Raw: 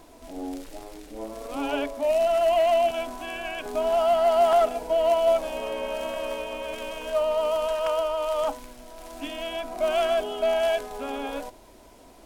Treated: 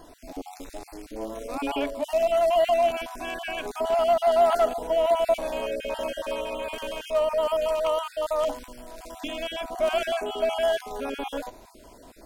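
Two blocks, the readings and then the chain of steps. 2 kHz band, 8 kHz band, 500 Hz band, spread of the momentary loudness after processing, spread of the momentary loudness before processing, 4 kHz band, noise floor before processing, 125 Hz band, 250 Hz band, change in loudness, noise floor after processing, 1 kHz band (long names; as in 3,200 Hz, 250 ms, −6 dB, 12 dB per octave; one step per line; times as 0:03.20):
0.0 dB, 0.0 dB, −0.5 dB, 19 LU, 17 LU, 0.0 dB, −50 dBFS, can't be measured, −0.5 dB, −0.5 dB, −50 dBFS, −0.5 dB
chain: time-frequency cells dropped at random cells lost 29%
in parallel at −10 dB: soft clipping −28.5 dBFS, distortion −7 dB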